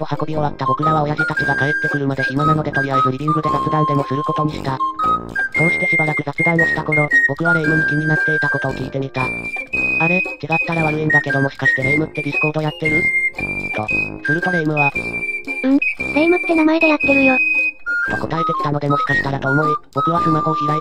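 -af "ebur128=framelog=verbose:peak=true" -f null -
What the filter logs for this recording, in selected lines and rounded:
Integrated loudness:
  I:         -16.6 LUFS
  Threshold: -26.6 LUFS
Loudness range:
  LRA:         2.7 LU
  Threshold: -36.5 LUFS
  LRA low:   -17.7 LUFS
  LRA high:  -15.0 LUFS
True peak:
  Peak:       -1.7 dBFS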